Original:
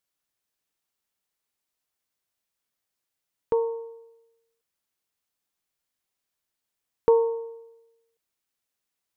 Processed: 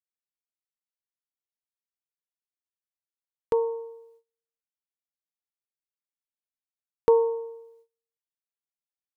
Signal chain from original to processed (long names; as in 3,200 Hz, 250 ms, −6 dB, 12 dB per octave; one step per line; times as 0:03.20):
noise gate −58 dBFS, range −24 dB